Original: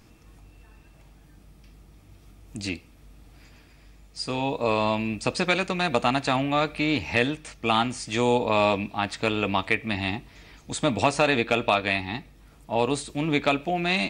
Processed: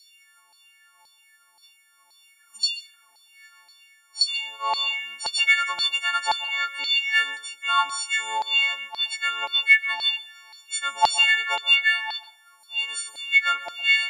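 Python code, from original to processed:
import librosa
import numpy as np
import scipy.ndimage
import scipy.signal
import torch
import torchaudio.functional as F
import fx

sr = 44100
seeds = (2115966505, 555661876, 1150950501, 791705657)

y = fx.freq_snap(x, sr, grid_st=4)
y = fx.spec_repair(y, sr, seeds[0], start_s=2.38, length_s=0.84, low_hz=250.0, high_hz=2700.0, source='both')
y = fx.filter_lfo_highpass(y, sr, shape='saw_down', hz=1.9, low_hz=820.0, high_hz=4500.0, q=6.4)
y = fx.rev_plate(y, sr, seeds[1], rt60_s=0.55, hf_ratio=0.55, predelay_ms=115, drr_db=16.5)
y = y * librosa.db_to_amplitude(-8.5)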